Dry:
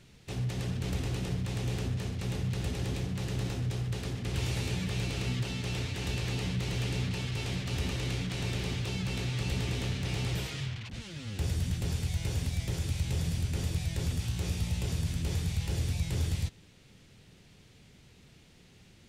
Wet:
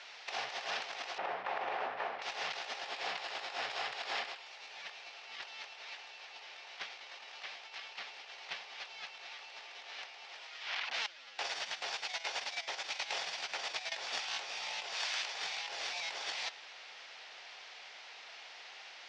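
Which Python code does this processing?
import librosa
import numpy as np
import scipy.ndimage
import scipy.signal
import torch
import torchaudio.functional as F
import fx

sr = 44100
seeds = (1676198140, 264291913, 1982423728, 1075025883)

y = fx.lowpass(x, sr, hz=1400.0, slope=12, at=(1.18, 2.22))
y = fx.notch(y, sr, hz=6000.0, q=12.0, at=(2.83, 4.47))
y = fx.steep_highpass(y, sr, hz=200.0, slope=72, at=(9.49, 10.01))
y = fx.upward_expand(y, sr, threshold_db=-38.0, expansion=2.5, at=(11.06, 13.92))
y = fx.highpass(y, sr, hz=800.0, slope=6, at=(14.94, 15.34))
y = fx.edit(y, sr, fx.reverse_span(start_s=6.47, length_s=2.16), tone=tone)
y = scipy.signal.sosfilt(scipy.signal.cheby1(3, 1.0, [720.0, 5500.0], 'bandpass', fs=sr, output='sos'), y)
y = fx.high_shelf(y, sr, hz=3100.0, db=-6.0)
y = fx.over_compress(y, sr, threshold_db=-52.0, ratio=-0.5)
y = y * librosa.db_to_amplitude(11.0)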